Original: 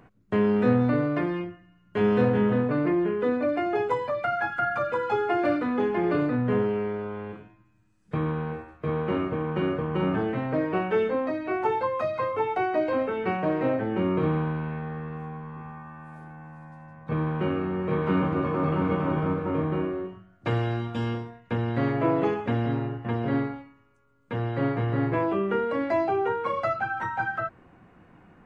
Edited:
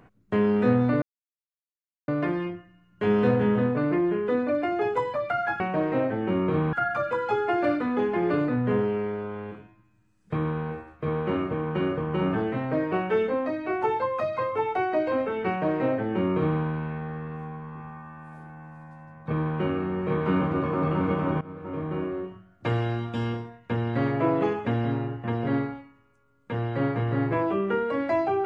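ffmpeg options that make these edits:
ffmpeg -i in.wav -filter_complex "[0:a]asplit=5[link_01][link_02][link_03][link_04][link_05];[link_01]atrim=end=1.02,asetpts=PTS-STARTPTS,afade=type=out:start_time=1.016:duration=0.004:curve=hsin,apad=pad_dur=1.06[link_06];[link_02]atrim=start=1.02:end=4.542,asetpts=PTS-STARTPTS,afade=type=in:duration=0.004:curve=hsin[link_07];[link_03]atrim=start=13.288:end=14.422[link_08];[link_04]atrim=start=4.538:end=19.22,asetpts=PTS-STARTPTS,afade=type=out:start_time=14.678:duration=0.004:curve=hsin:silence=0.1[link_09];[link_05]atrim=start=19.22,asetpts=PTS-STARTPTS,afade=type=in:duration=0.78:silence=0.1[link_10];[link_06][link_07]concat=n=2:v=0:a=1[link_11];[link_11][link_08]acrossfade=duration=0.004:curve1=hsin:curve2=hsin[link_12];[link_09][link_10]concat=n=2:v=0:a=1[link_13];[link_12][link_13]acrossfade=duration=0.004:curve1=hsin:curve2=hsin" out.wav

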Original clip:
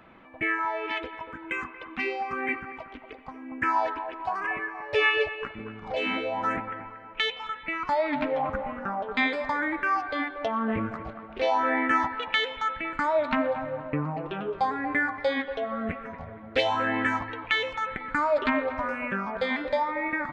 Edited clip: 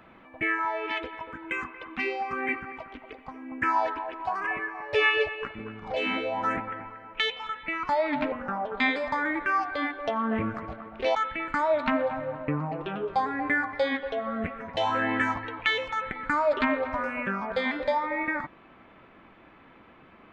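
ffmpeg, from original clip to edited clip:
ffmpeg -i in.wav -filter_complex "[0:a]asplit=4[link_01][link_02][link_03][link_04];[link_01]atrim=end=8.322[link_05];[link_02]atrim=start=8.688:end=11.522[link_06];[link_03]atrim=start=12.598:end=16.222[link_07];[link_04]atrim=start=16.618[link_08];[link_05][link_06]acrossfade=duration=0.004:curve1=hsin:curve2=hsin[link_09];[link_09][link_07]acrossfade=duration=0.004:curve1=hsin:curve2=hsin[link_10];[link_10][link_08]acrossfade=duration=0.004:curve1=hsin:curve2=hsin" out.wav

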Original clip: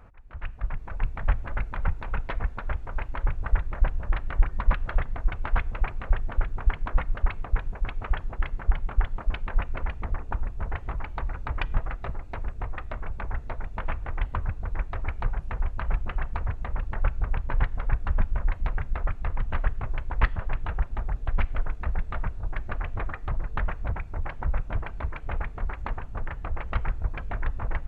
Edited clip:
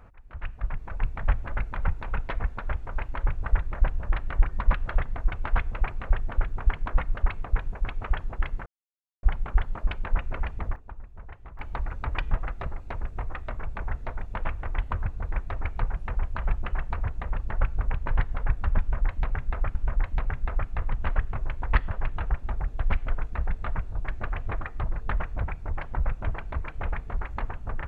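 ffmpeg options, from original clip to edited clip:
ffmpeg -i in.wav -filter_complex "[0:a]asplit=5[link_01][link_02][link_03][link_04][link_05];[link_01]atrim=end=8.66,asetpts=PTS-STARTPTS,afade=type=out:start_time=8.656:duration=0.004:curve=hsin,apad=pad_dur=0.57[link_06];[link_02]atrim=start=8.66:end=10.19,asetpts=PTS-STARTPTS,afade=type=in:duration=0.004:curve=hsin,afade=type=out:start_time=1.27:duration=0.26:curve=log:silence=0.237137[link_07];[link_03]atrim=start=10.19:end=11.02,asetpts=PTS-STARTPTS,volume=-12.5dB[link_08];[link_04]atrim=start=11.02:end=19.182,asetpts=PTS-STARTPTS,afade=type=in:duration=0.26:curve=log:silence=0.237137[link_09];[link_05]atrim=start=18.228[link_10];[link_06][link_07][link_08][link_09]concat=n=4:v=0:a=1[link_11];[link_11][link_10]acrossfade=duration=0.004:curve1=hsin:curve2=hsin" out.wav

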